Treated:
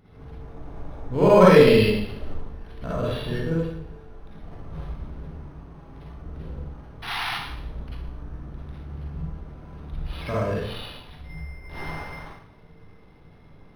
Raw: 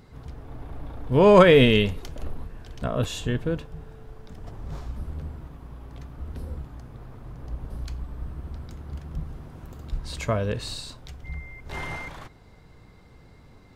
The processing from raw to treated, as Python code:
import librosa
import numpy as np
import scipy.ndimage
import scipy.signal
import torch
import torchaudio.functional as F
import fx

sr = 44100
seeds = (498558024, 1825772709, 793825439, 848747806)

y = fx.spec_paint(x, sr, seeds[0], shape='noise', start_s=7.02, length_s=0.31, low_hz=670.0, high_hz=4100.0, level_db=-27.0)
y = fx.rev_schroeder(y, sr, rt60_s=0.72, comb_ms=38, drr_db=-7.5)
y = np.interp(np.arange(len(y)), np.arange(len(y))[::6], y[::6])
y = y * librosa.db_to_amplitude(-7.0)